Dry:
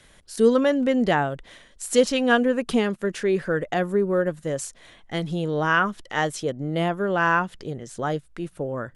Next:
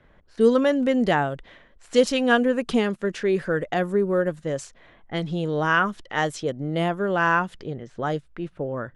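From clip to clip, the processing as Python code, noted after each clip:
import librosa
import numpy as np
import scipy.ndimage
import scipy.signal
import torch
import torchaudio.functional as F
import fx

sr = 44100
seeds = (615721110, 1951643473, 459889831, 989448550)

y = fx.env_lowpass(x, sr, base_hz=1400.0, full_db=-19.5)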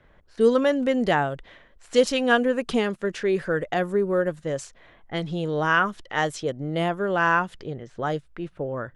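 y = fx.peak_eq(x, sr, hz=220.0, db=-3.0, octaves=0.99)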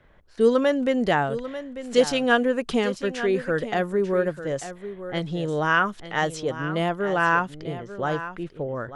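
y = x + 10.0 ** (-12.5 / 20.0) * np.pad(x, (int(893 * sr / 1000.0), 0))[:len(x)]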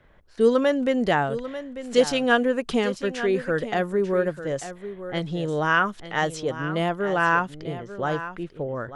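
y = fx.end_taper(x, sr, db_per_s=540.0)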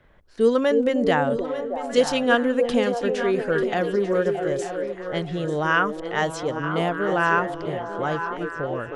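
y = fx.echo_stepped(x, sr, ms=312, hz=360.0, octaves=0.7, feedback_pct=70, wet_db=-2.5)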